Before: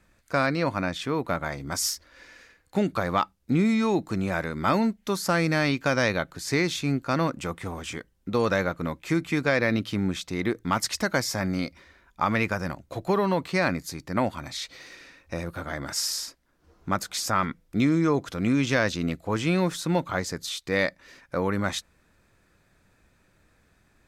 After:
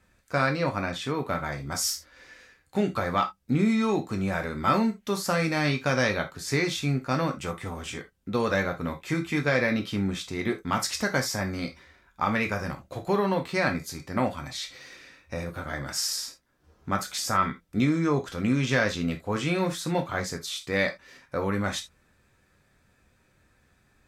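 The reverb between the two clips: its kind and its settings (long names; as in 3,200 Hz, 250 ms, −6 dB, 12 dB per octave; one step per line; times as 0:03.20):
reverb whose tail is shaped and stops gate 100 ms falling, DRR 3 dB
level −2.5 dB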